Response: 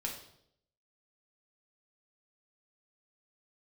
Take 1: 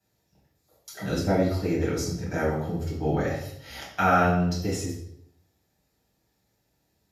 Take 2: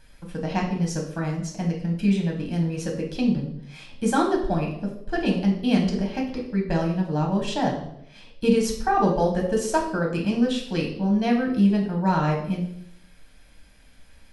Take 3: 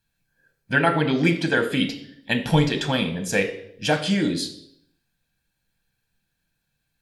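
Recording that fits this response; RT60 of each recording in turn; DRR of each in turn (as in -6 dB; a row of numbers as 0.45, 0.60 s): 2; 0.70, 0.70, 0.70 s; -10.0, -1.0, 5.5 dB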